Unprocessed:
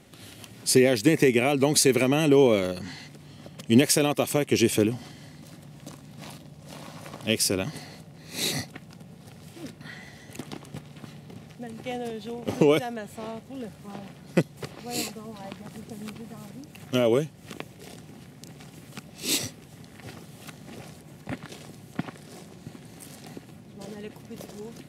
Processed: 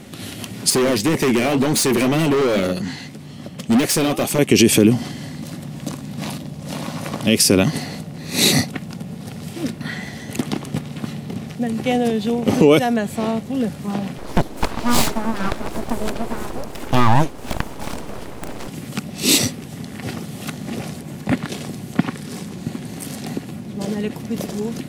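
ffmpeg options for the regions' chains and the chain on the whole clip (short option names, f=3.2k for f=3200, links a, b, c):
-filter_complex "[0:a]asettb=1/sr,asplit=3[a][b][c];[a]atrim=end=0.704[d];[b]atrim=start=0.7:end=4.39,asetpts=PTS-STARTPTS,afade=t=in:d=0.004:c=qsin,afade=t=out:st=3.686:d=0.004:c=qsin,flanger=delay=4.8:depth=7.2:regen=-67:speed=1.9:shape=triangular,asoftclip=type=hard:threshold=-28.5dB[e];[c]atrim=start=4.386[f];[d][e]acrossfade=d=0.004:c1=hsin:c2=qsin[g];[g][f]acrossfade=d=0.004:c1=qsin:c2=hsin,asettb=1/sr,asplit=3[h][i][j];[h]atrim=end=14.184[k];[i]atrim=start=14.18:end=18.68,asetpts=PTS-STARTPTS,afade=t=in:d=0.004:c=qsin,afade=t=out:st=4.496:d=0.004:c=qsin,equalizer=f=550:t=o:w=2.2:g=9,aeval=exprs='abs(val(0))':c=same[l];[j]atrim=start=18.676[m];[k][l]acrossfade=d=0.004:c1=hsin:c2=qsin[n];[n][m]acrossfade=d=0.004:c1=qsin:c2=hsin,asettb=1/sr,asplit=3[o][p][q];[o]atrim=end=22.014[r];[p]atrim=start=22.01:end=22.56,asetpts=PTS-STARTPTS,afade=t=in:d=0.004:c=qsin,afade=t=out:st=0.546:d=0.004:c=qsin,equalizer=f=650:t=o:w=0.2:g=-14.5,bandreject=f=360:w=12[s];[q]atrim=start=22.556[t];[r][s]acrossfade=d=0.004:c1=hsin:c2=qsin[u];[u][t]acrossfade=d=0.004:c1=qsin:c2=hsin,equalizer=f=220:w=1.8:g=5.5,alimiter=level_in=14.5dB:limit=-1dB:release=50:level=0:latency=1,volume=-2dB"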